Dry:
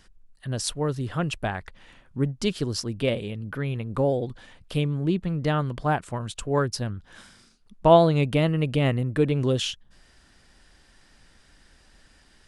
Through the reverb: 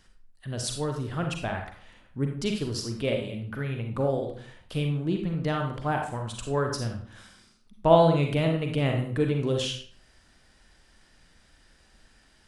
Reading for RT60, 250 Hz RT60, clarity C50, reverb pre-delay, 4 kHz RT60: 0.50 s, 0.60 s, 4.5 dB, 37 ms, 0.40 s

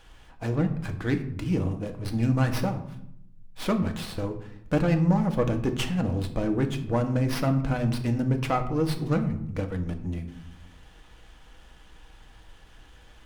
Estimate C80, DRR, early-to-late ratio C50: 14.0 dB, 5.0 dB, 11.5 dB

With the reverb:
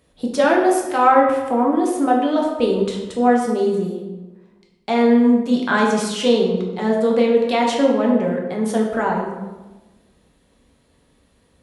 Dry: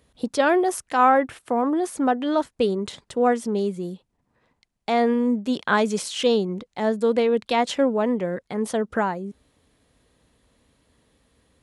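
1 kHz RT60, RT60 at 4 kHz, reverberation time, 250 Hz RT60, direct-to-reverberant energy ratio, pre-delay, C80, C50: 1.1 s, 0.75 s, 1.2 s, 1.5 s, −1.5 dB, 4 ms, 5.5 dB, 4.0 dB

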